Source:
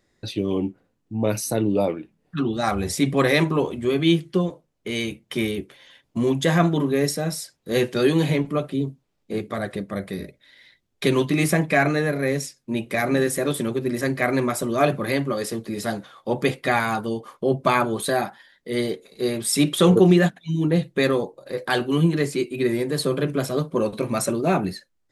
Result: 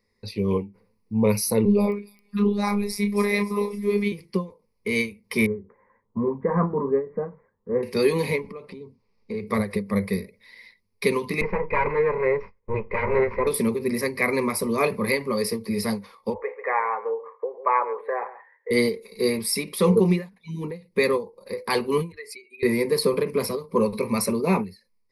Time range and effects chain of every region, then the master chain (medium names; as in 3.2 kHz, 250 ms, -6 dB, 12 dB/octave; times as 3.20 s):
1.65–4.12 s: doubling 29 ms -9 dB + robot voice 204 Hz + feedback echo behind a high-pass 270 ms, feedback 47%, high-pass 5.5 kHz, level -6.5 dB
5.46–7.83 s: steep low-pass 1.6 kHz 48 dB/octave + flange 1.3 Hz, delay 6.4 ms, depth 4 ms, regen -70%
8.46–9.47 s: low-pass 5.8 kHz + compression, threshold -34 dBFS
11.41–13.47 s: comb filter that takes the minimum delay 2 ms + low-pass 2.1 kHz 24 dB/octave + tape noise reduction on one side only decoder only
16.34–18.71 s: elliptic band-pass 460–1800 Hz, stop band 50 dB + delay 138 ms -16.5 dB
22.12–22.63 s: spectral contrast enhancement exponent 1.6 + high-pass 1.4 kHz
whole clip: rippled EQ curve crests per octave 0.88, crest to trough 16 dB; level rider; endings held to a fixed fall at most 190 dB/s; trim -8 dB